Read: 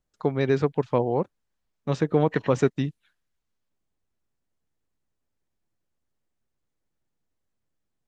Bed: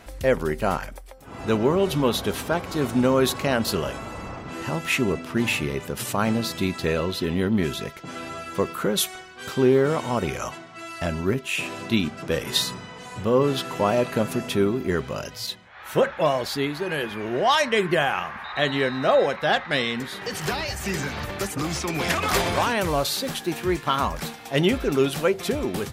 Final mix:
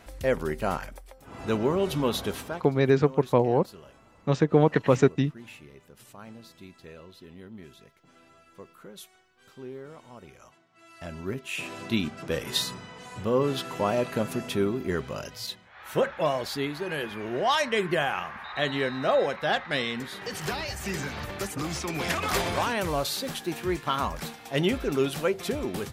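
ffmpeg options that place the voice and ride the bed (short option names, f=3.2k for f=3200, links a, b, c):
-filter_complex "[0:a]adelay=2400,volume=1.5dB[a];[1:a]volume=13.5dB,afade=t=out:st=2.26:d=0.47:silence=0.125893,afade=t=in:st=10.7:d=1.16:silence=0.125893[b];[a][b]amix=inputs=2:normalize=0"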